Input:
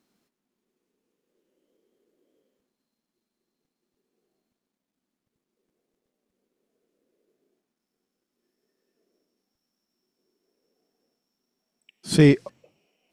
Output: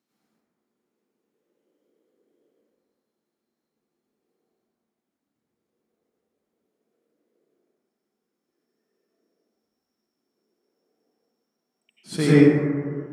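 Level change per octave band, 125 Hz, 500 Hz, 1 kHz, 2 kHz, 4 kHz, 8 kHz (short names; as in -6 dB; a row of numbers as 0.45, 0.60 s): 0.0, +3.0, +4.5, +1.5, -3.5, -3.5 dB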